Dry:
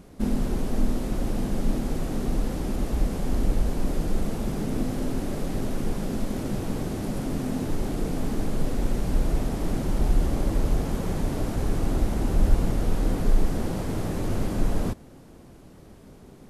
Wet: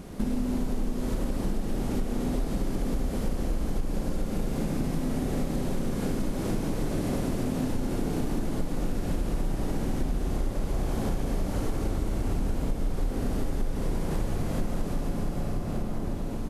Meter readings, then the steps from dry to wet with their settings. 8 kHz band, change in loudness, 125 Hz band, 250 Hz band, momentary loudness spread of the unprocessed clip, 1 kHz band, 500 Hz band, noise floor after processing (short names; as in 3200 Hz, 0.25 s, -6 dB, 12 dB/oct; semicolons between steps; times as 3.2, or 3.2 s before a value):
-2.0 dB, -2.5 dB, -2.5 dB, -1.5 dB, 4 LU, -2.0 dB, -1.5 dB, -32 dBFS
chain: outdoor echo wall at 200 m, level -11 dB; Schroeder reverb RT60 3.9 s, combs from 32 ms, DRR -1.5 dB; compressor 6:1, threshold -31 dBFS, peak gain reduction 19 dB; gain +6 dB